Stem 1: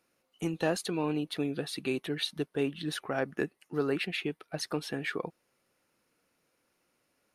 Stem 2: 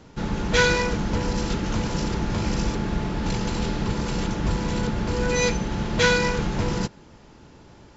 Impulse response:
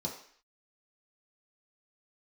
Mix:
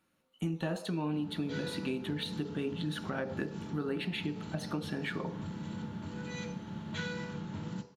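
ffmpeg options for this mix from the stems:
-filter_complex "[0:a]deesser=0.8,volume=-1.5dB,asplit=3[a][b][c];[b]volume=-6.5dB[d];[1:a]highpass=f=96:w=0.5412,highpass=f=96:w=1.3066,adelay=950,volume=-19dB,asplit=2[e][f];[f]volume=-6dB[g];[c]apad=whole_len=392946[h];[e][h]sidechaincompress=threshold=-39dB:ratio=8:attack=16:release=169[i];[2:a]atrim=start_sample=2205[j];[d][g]amix=inputs=2:normalize=0[k];[k][j]afir=irnorm=-1:irlink=0[l];[a][i][l]amix=inputs=3:normalize=0,acompressor=threshold=-32dB:ratio=3"

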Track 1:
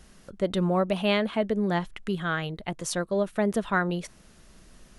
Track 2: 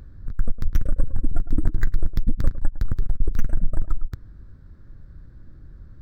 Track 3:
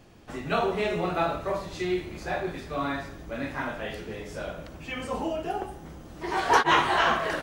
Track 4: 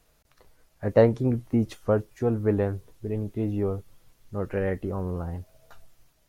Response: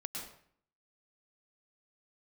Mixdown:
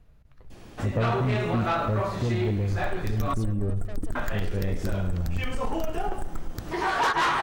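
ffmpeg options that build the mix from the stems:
-filter_complex "[0:a]aecho=1:1:1.7:0.47,asoftclip=type=tanh:threshold=-26dB,adelay=500,volume=-15dB[a];[1:a]bass=f=250:g=-6,treble=f=4k:g=11,acompressor=threshold=-24dB:ratio=2,adelay=2450,volume=-2.5dB,asplit=2[b][c];[c]volume=-20.5dB[d];[2:a]adynamicequalizer=threshold=0.0158:dfrequency=1300:dqfactor=1.2:tfrequency=1300:tqfactor=1.2:attack=5:release=100:ratio=0.375:range=3.5:mode=boostabove:tftype=bell,adelay=500,volume=-1dB,asplit=3[e][f][g];[e]atrim=end=3.34,asetpts=PTS-STARTPTS,afade=t=out:st=3.336:d=0.004:c=hsin[h];[f]atrim=start=3.34:end=4.15,asetpts=PTS-STARTPTS,volume=0[i];[g]atrim=start=4.15,asetpts=PTS-STARTPTS,afade=t=in:d=0.004:c=hsin[j];[h][i][j]concat=n=3:v=0:a=1,asplit=2[k][l];[l]volume=-21.5dB[m];[3:a]bass=f=250:g=14,treble=f=4k:g=-13,volume=-9dB,asplit=2[n][o];[o]volume=-15.5dB[p];[d][m][p]amix=inputs=3:normalize=0,aecho=0:1:102|204|306|408|510|612|714|816|918|1020:1|0.6|0.36|0.216|0.13|0.0778|0.0467|0.028|0.0168|0.0101[q];[a][b][k][n][q]amix=inputs=5:normalize=0,acontrast=84,asoftclip=type=tanh:threshold=-12dB,acompressor=threshold=-28dB:ratio=2"

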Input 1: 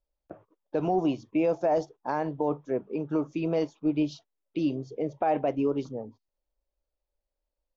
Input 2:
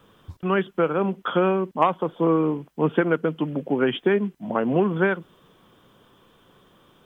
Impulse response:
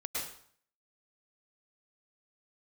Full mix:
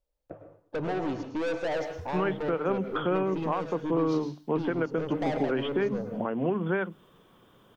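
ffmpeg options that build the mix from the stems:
-filter_complex "[0:a]equalizer=f=100:t=o:w=0.33:g=9,equalizer=f=160:t=o:w=0.33:g=3,equalizer=f=500:t=o:w=0.33:g=7,aeval=exprs='(tanh(28.2*val(0)+0.25)-tanh(0.25))/28.2':c=same,volume=-1.5dB,asplit=2[a][b];[b]volume=-6dB[c];[1:a]lowpass=f=1.5k:p=1,aemphasis=mode=production:type=75kf,bandreject=f=50:t=h:w=6,bandreject=f=100:t=h:w=6,bandreject=f=150:t=h:w=6,bandreject=f=200:t=h:w=6,bandreject=f=250:t=h:w=6,bandreject=f=300:t=h:w=6,adelay=1700,volume=-2dB[d];[2:a]atrim=start_sample=2205[e];[c][e]afir=irnorm=-1:irlink=0[f];[a][d][f]amix=inputs=3:normalize=0,alimiter=limit=-17.5dB:level=0:latency=1:release=254"

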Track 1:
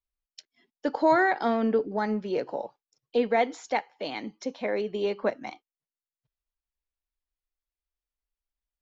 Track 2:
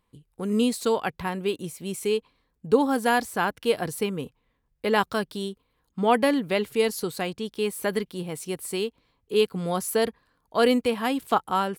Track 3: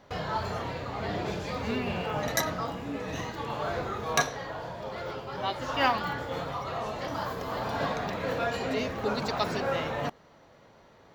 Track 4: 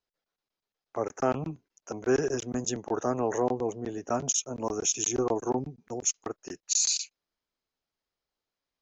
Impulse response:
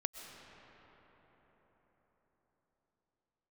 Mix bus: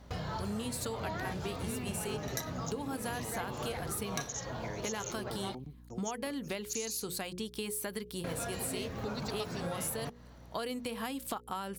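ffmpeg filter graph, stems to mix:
-filter_complex "[0:a]highpass=700,volume=-9.5dB[a];[1:a]equalizer=f=120:w=0.3:g=-6.5,bandreject=f=60:t=h:w=6,bandreject=f=120:t=h:w=6,bandreject=f=180:t=h:w=6,bandreject=f=240:t=h:w=6,bandreject=f=300:t=h:w=6,bandreject=f=360:t=h:w=6,bandreject=f=420:t=h:w=6,bandreject=f=480:t=h:w=6,bandreject=f=540:t=h:w=6,acompressor=threshold=-30dB:ratio=2.5,volume=-0.5dB[b];[2:a]volume=-4dB,asplit=3[c][d][e];[c]atrim=end=5.55,asetpts=PTS-STARTPTS,afade=t=out:st=5.546:d=0.004:c=hsin[f];[d]atrim=start=5.55:end=8.24,asetpts=PTS-STARTPTS,volume=0[g];[e]atrim=start=8.24,asetpts=PTS-STARTPTS,afade=t=in:d=0.004:c=hsin[h];[f][g][h]concat=n=3:v=0:a=1[i];[3:a]volume=-13dB[j];[a][b][i][j]amix=inputs=4:normalize=0,bass=f=250:g=8,treble=f=4k:g=7,aeval=exprs='val(0)+0.00224*(sin(2*PI*60*n/s)+sin(2*PI*2*60*n/s)/2+sin(2*PI*3*60*n/s)/3+sin(2*PI*4*60*n/s)/4+sin(2*PI*5*60*n/s)/5)':c=same,acompressor=threshold=-35dB:ratio=4"

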